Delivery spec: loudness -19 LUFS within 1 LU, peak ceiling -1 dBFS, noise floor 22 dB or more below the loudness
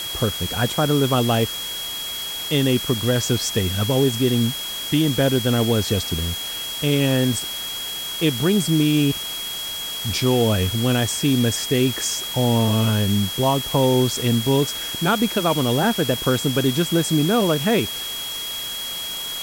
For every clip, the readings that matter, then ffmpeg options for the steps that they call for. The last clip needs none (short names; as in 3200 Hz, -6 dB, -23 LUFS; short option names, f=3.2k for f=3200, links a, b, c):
steady tone 3300 Hz; tone level -28 dBFS; noise floor -29 dBFS; noise floor target -43 dBFS; loudness -20.5 LUFS; peak -7.0 dBFS; loudness target -19.0 LUFS
-> -af "bandreject=f=3.3k:w=30"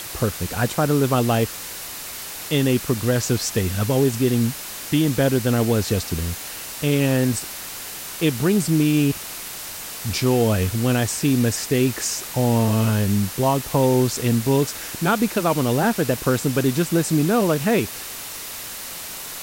steady tone none; noise floor -34 dBFS; noise floor target -44 dBFS
-> -af "afftdn=nr=10:nf=-34"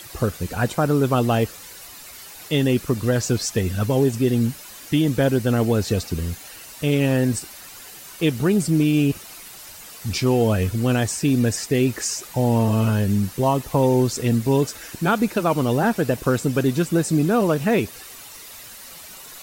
noise floor -41 dBFS; noise floor target -43 dBFS
-> -af "afftdn=nr=6:nf=-41"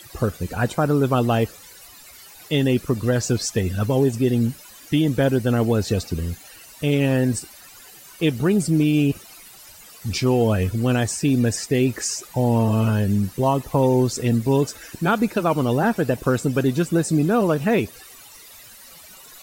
noise floor -45 dBFS; loudness -21.0 LUFS; peak -8.5 dBFS; loudness target -19.0 LUFS
-> -af "volume=2dB"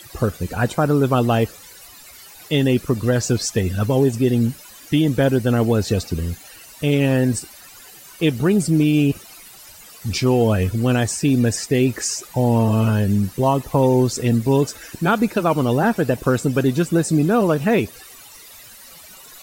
loudness -19.0 LUFS; peak -6.5 dBFS; noise floor -43 dBFS